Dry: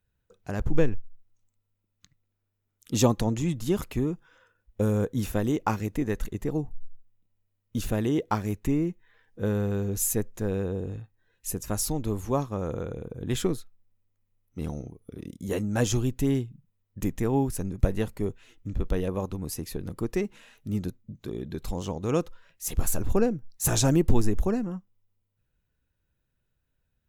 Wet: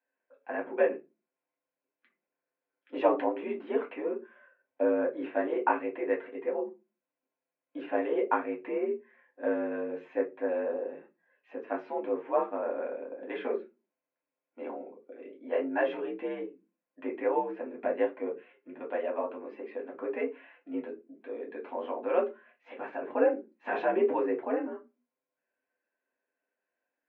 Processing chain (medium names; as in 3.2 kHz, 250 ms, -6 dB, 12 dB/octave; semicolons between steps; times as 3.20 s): reverberation, pre-delay 4 ms, DRR -1.5 dB; mistuned SSB +61 Hz 310–2400 Hz; trim -4 dB